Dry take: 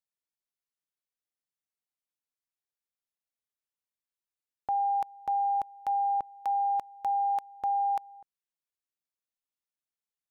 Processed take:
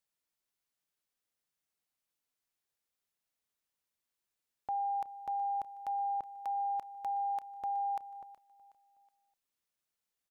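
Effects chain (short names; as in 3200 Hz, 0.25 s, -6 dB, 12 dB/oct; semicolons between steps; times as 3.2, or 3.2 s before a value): limiter -35.5 dBFS, peak gain reduction 11.5 dB; feedback echo 0.37 s, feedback 41%, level -18 dB; gain +5 dB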